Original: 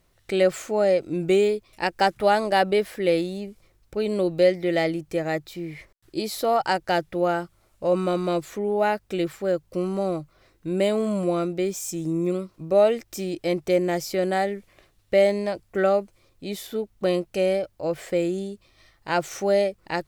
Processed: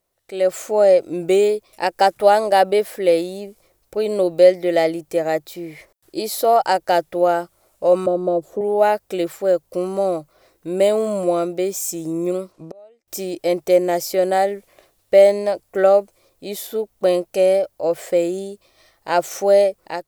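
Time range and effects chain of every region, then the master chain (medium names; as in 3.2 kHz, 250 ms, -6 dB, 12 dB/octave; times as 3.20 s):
8.06–8.61 s: FFT filter 590 Hz 0 dB, 2.2 kHz -25 dB, 3.2 kHz -18 dB + three bands compressed up and down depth 70%
12.52–13.08 s: low-pass 8.2 kHz + inverted gate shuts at -26 dBFS, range -35 dB
whole clip: pre-emphasis filter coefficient 0.8; level rider gain up to 13 dB; peaking EQ 600 Hz +14.5 dB 2.2 oct; trim -6 dB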